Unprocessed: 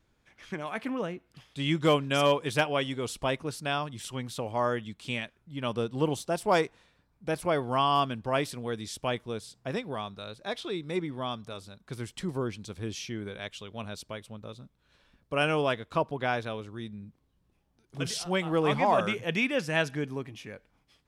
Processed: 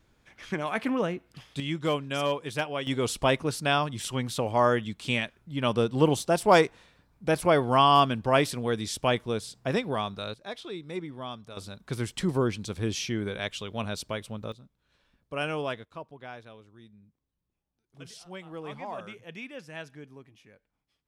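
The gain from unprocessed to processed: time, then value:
+5 dB
from 1.6 s -4 dB
from 2.87 s +5.5 dB
from 10.34 s -4 dB
from 11.57 s +6 dB
from 14.52 s -4.5 dB
from 15.85 s -13.5 dB

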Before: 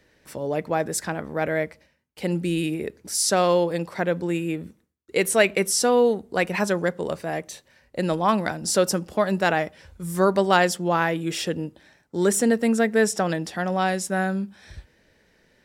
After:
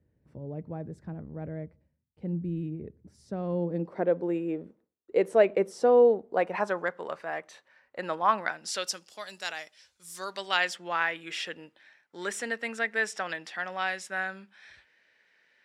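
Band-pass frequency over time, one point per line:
band-pass, Q 1.2
3.41 s 100 Hz
4.11 s 520 Hz
6.19 s 520 Hz
6.93 s 1300 Hz
8.38 s 1300 Hz
9.1 s 5500 Hz
10.1 s 5500 Hz
10.76 s 2100 Hz

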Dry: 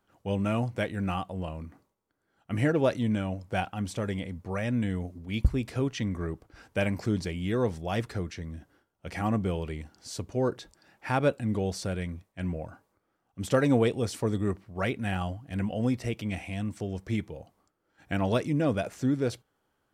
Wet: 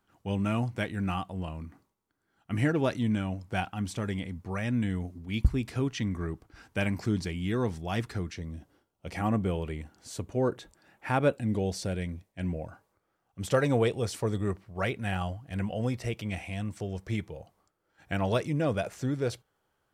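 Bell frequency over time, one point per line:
bell -6.5 dB 0.58 oct
540 Hz
from 8.36 s 1600 Hz
from 9.17 s 5000 Hz
from 11.36 s 1200 Hz
from 12.68 s 260 Hz

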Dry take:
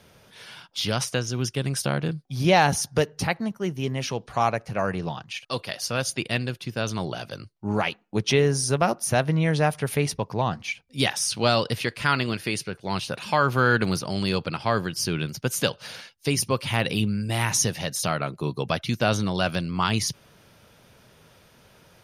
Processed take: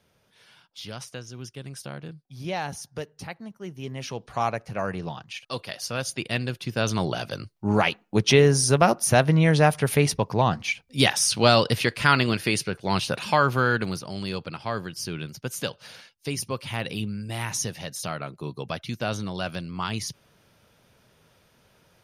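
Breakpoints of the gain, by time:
3.41 s -12 dB
4.29 s -3 dB
6.12 s -3 dB
6.92 s +3.5 dB
13.18 s +3.5 dB
14 s -6 dB

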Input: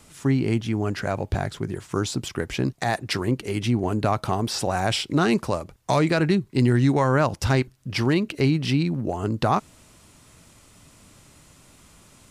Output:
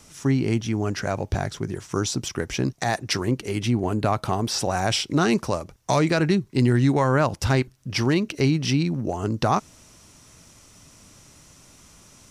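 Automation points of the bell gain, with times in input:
bell 5800 Hz 0.29 oct
3.19 s +10 dB
4.01 s -1 dB
4.78 s +8 dB
6.45 s +8 dB
6.87 s +1.5 dB
7.52 s +1.5 dB
8.16 s +10.5 dB

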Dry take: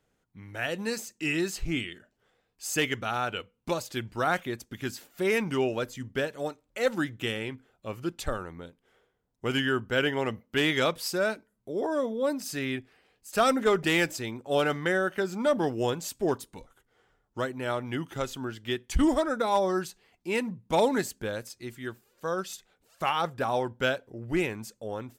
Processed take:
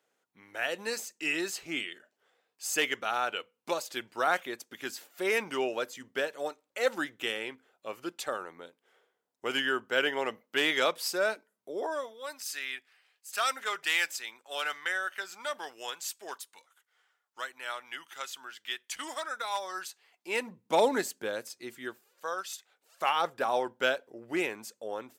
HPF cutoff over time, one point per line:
11.74 s 440 Hz
12.19 s 1300 Hz
19.7 s 1300 Hz
20.67 s 320 Hz
21.84 s 320 Hz
22.46 s 950 Hz
23.17 s 380 Hz

